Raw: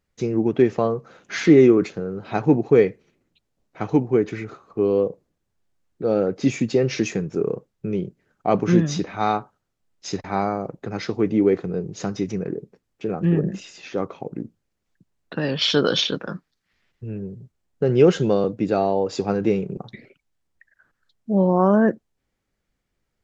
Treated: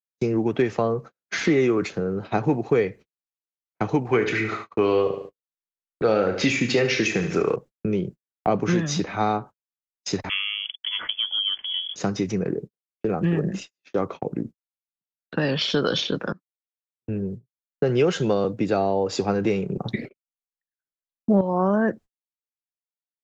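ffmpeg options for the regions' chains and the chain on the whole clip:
-filter_complex "[0:a]asettb=1/sr,asplit=3[s0][s1][s2];[s0]atrim=end=4.054[s3];[s1]atrim=start=4.05:end=7.56,asetpts=PTS-STARTPTS,afade=t=in:d=0.004:c=qsin,afade=t=out:st=3.506:d=0.004:c=qsin,equalizer=f=2300:w=0.37:g=14.5,asplit=2[s4][s5];[s5]adelay=33,volume=0.282[s6];[s4][s6]amix=inputs=2:normalize=0,atrim=end_sample=154791,aecho=1:1:73|146|219|292:0.282|0.107|0.0407|0.0155,atrim=end_sample=154791[s7];[s2]atrim=start=7.556[s8];[s3][s7]acrossfade=d=0.004:c1=hsin:c2=qsin[s9];[s9][s8]acrossfade=d=0.004:c1=qsin:c2=hsin,asettb=1/sr,asplit=3[s10][s11][s12];[s10]atrim=end=10.294[s13];[s11]atrim=start=10.29:end=11.96,asetpts=PTS-STARTPTS,afade=t=in:d=0.004:c=qsin,afade=t=out:st=1.666:d=0.004:c=qsin,aeval=exprs='sgn(val(0))*max(abs(val(0))-0.00316,0)':c=same,lowpass=f=3000:t=q:w=0.5098,lowpass=f=3000:t=q:w=0.6013,lowpass=f=3000:t=q:w=0.9,lowpass=f=3000:t=q:w=2.563,afreqshift=-3500[s14];[s12]atrim=start=11.956[s15];[s13][s14]acrossfade=d=0.004:c1=hsin:c2=qsin[s16];[s16][s15]acrossfade=d=0.004:c1=qsin:c2=hsin,asettb=1/sr,asplit=3[s17][s18][s19];[s17]atrim=end=16.324[s20];[s18]atrim=start=16.32:end=17.08,asetpts=PTS-STARTPTS,afade=t=in:d=0.004:c=qsin,afade=t=out:st=0.756:d=0.004:c=qsin,highpass=190,acompressor=threshold=0.00282:ratio=8:attack=3.2:release=140:knee=1:detection=peak[s21];[s19]atrim=start=17.076[s22];[s20][s21]acrossfade=d=0.004:c1=hsin:c2=qsin[s23];[s23][s22]acrossfade=d=0.004:c1=qsin:c2=hsin,asettb=1/sr,asplit=3[s24][s25][s26];[s24]atrim=end=19.854[s27];[s25]atrim=start=19.85:end=21.41,asetpts=PTS-STARTPTS,afade=t=in:d=0.004:c=qsin,afade=t=out:st=1.556:d=0.004:c=qsin,acontrast=29,equalizer=f=280:t=o:w=2.7:g=7[s28];[s26]atrim=start=21.406[s29];[s27][s28]acrossfade=d=0.004:c1=hsin:c2=qsin[s30];[s30][s29]acrossfade=d=0.004:c1=qsin:c2=hsin,agate=range=0.00282:threshold=0.0158:ratio=16:detection=peak,acrossover=split=110|650[s31][s32][s33];[s31]acompressor=threshold=0.01:ratio=4[s34];[s32]acompressor=threshold=0.0501:ratio=4[s35];[s33]acompressor=threshold=0.0355:ratio=4[s36];[s34][s35][s36]amix=inputs=3:normalize=0,volume=1.58"

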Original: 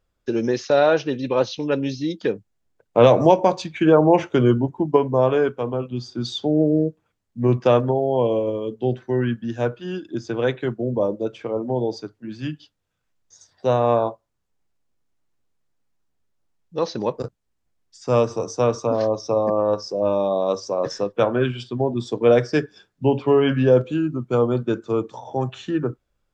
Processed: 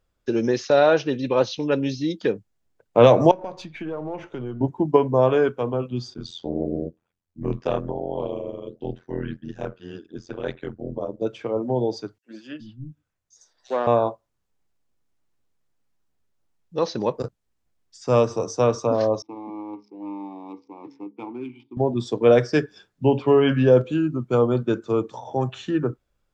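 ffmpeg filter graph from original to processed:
-filter_complex "[0:a]asettb=1/sr,asplit=3[s0][s1][s2];[s0]atrim=end=3.314[s3];[s1]atrim=start=3.31:end=4.61,asetpts=PTS-STARTPTS,afade=t=in:d=0.004:c=qsin,afade=t=out:st=1.296:d=0.004:c=qsin,aeval=exprs='if(lt(val(0),0),0.708*val(0),val(0))':c=same,lowpass=f=3300:p=1,acompressor=threshold=0.0178:ratio=2.5:attack=3.2:release=140:knee=1:detection=peak[s4];[s2]atrim=start=4.606[s5];[s3][s4]acrossfade=d=0.004:c1=hsin:c2=qsin[s6];[s6][s5]acrossfade=d=0.004:c1=qsin:c2=hsin,asettb=1/sr,asplit=3[s7][s8][s9];[s7]atrim=end=6.144[s10];[s8]atrim=start=6.14:end=11.22,asetpts=PTS-STARTPTS,afade=t=in:d=0.004:c=qsin,afade=t=out:st=5.076:d=0.004:c=qsin,flanger=delay=0.8:depth=7.1:regen=-76:speed=1.8:shape=sinusoidal,tremolo=f=85:d=1[s11];[s9]atrim=start=11.216[s12];[s10][s11]acrossfade=d=0.004:c1=hsin:c2=qsin[s13];[s13][s12]acrossfade=d=0.004:c1=qsin:c2=hsin,asettb=1/sr,asplit=3[s14][s15][s16];[s14]atrim=end=12.184[s17];[s15]atrim=start=12.18:end=13.87,asetpts=PTS-STARTPTS,afade=t=in:d=0.004:c=qsin,afade=t=out:st=1.686:d=0.004:c=qsin,aeval=exprs='(tanh(5.01*val(0)+0.7)-tanh(0.7))/5.01':c=same,acrossover=split=230|3700[s18][s19][s20];[s19]adelay=60[s21];[s18]adelay=370[s22];[s22][s21][s20]amix=inputs=3:normalize=0,atrim=end_sample=74529[s23];[s16]atrim=start=13.866[s24];[s17][s23]acrossfade=d=0.004:c1=hsin:c2=qsin[s25];[s25][s24]acrossfade=d=0.004:c1=qsin:c2=hsin,asettb=1/sr,asplit=3[s26][s27][s28];[s26]atrim=end=19.224[s29];[s27]atrim=start=19.22:end=21.77,asetpts=PTS-STARTPTS,afade=t=in:d=0.004:c=qsin,afade=t=out:st=2.546:d=0.004:c=qsin,bandreject=f=69.16:t=h:w=4,bandreject=f=138.32:t=h:w=4,bandreject=f=207.48:t=h:w=4,bandreject=f=276.64:t=h:w=4,bandreject=f=345.8:t=h:w=4,bandreject=f=414.96:t=h:w=4,bandreject=f=484.12:t=h:w=4,adynamicsmooth=sensitivity=7.5:basefreq=1400,asplit=3[s30][s31][s32];[s30]bandpass=f=300:t=q:w=8,volume=1[s33];[s31]bandpass=f=870:t=q:w=8,volume=0.501[s34];[s32]bandpass=f=2240:t=q:w=8,volume=0.355[s35];[s33][s34][s35]amix=inputs=3:normalize=0[s36];[s28]atrim=start=21.766[s37];[s29][s36]acrossfade=d=0.004:c1=hsin:c2=qsin[s38];[s38][s37]acrossfade=d=0.004:c1=qsin:c2=hsin"

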